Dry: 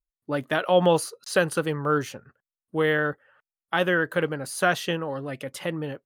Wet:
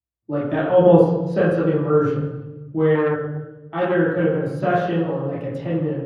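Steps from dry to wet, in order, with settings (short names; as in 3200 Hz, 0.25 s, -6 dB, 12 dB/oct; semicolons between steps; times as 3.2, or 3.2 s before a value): 0.78–1.38 tilt shelf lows +3 dB; reverb RT60 1.2 s, pre-delay 3 ms, DRR -9.5 dB; 2.95–3.95 core saturation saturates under 590 Hz; gain -18 dB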